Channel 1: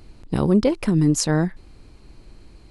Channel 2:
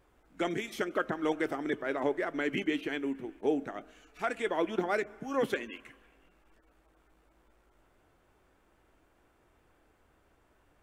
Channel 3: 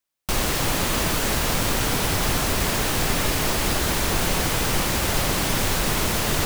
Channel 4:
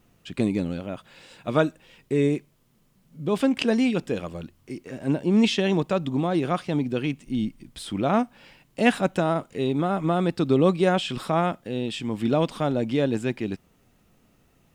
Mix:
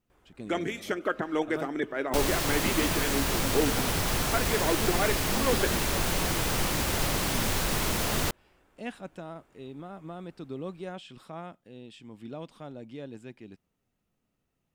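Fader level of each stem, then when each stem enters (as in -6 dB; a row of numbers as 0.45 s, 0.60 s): mute, +2.0 dB, -5.5 dB, -18.0 dB; mute, 0.10 s, 1.85 s, 0.00 s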